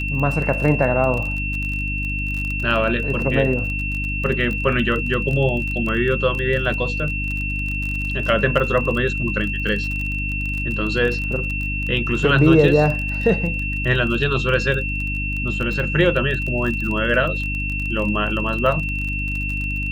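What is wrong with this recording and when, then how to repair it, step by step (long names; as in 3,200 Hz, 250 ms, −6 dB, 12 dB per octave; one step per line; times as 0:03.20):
surface crackle 26 per second −25 dBFS
mains hum 50 Hz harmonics 6 −26 dBFS
whistle 2,700 Hz −25 dBFS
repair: click removal
hum removal 50 Hz, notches 6
notch filter 2,700 Hz, Q 30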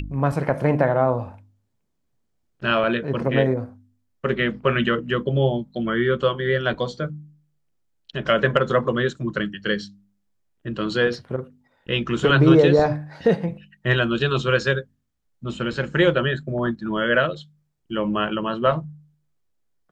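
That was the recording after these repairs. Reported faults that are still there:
none of them is left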